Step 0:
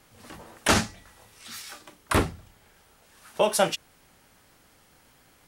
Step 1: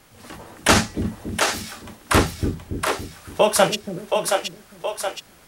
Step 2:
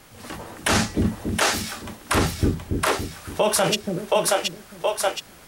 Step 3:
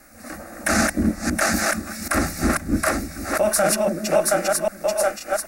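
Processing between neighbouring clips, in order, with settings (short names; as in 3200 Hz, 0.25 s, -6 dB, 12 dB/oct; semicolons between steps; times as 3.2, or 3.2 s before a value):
split-band echo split 380 Hz, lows 0.282 s, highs 0.722 s, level -4 dB; gain +5.5 dB
limiter -13 dBFS, peak gain reduction 11 dB; gain +3.5 dB
reverse delay 0.26 s, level -1.5 dB; fixed phaser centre 640 Hz, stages 8; added harmonics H 6 -32 dB, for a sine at -8 dBFS; gain +2.5 dB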